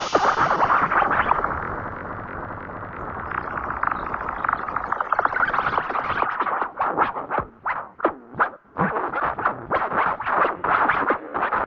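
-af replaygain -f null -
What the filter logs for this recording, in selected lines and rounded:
track_gain = +3.6 dB
track_peak = 0.440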